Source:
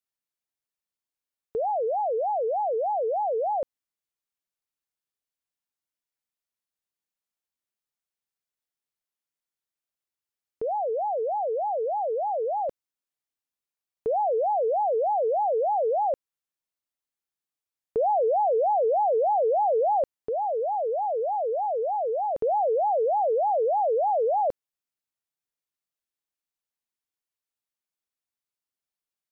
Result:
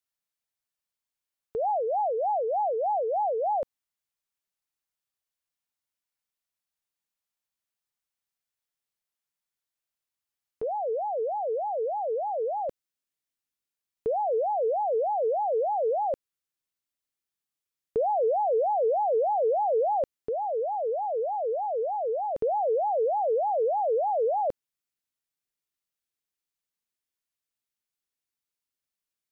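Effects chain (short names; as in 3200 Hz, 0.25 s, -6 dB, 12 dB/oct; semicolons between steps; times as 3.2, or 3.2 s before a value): bell 350 Hz -4.5 dB 1.6 oct, from 10.63 s 780 Hz; gain +1.5 dB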